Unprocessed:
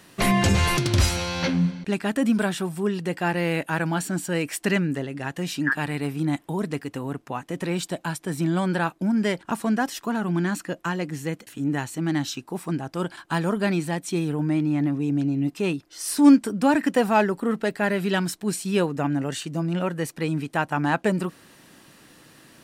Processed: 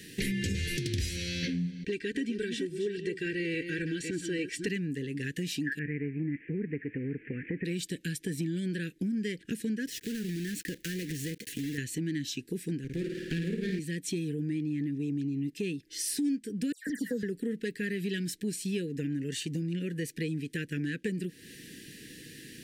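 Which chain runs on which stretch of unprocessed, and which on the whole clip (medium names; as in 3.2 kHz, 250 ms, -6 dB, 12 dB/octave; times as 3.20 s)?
1.85–4.67 s: chunks repeated in reverse 282 ms, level -9 dB + low-pass 5.9 kHz + comb 2.6 ms, depth 63%
5.79–7.65 s: zero-crossing glitches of -21.5 dBFS + steep low-pass 2.4 kHz 72 dB/octave
9.87–11.78 s: block-companded coder 3-bit + compression 2.5:1, threshold -34 dBFS
12.84–13.79 s: treble shelf 7.4 kHz -9.5 dB + flutter echo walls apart 9.1 m, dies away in 0.88 s + sliding maximum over 9 samples
16.72–17.23 s: static phaser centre 510 Hz, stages 8 + phase dispersion lows, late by 147 ms, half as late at 2.5 kHz
whole clip: Chebyshev band-stop 470–1700 Hz, order 4; compression 4:1, threshold -37 dBFS; trim +4.5 dB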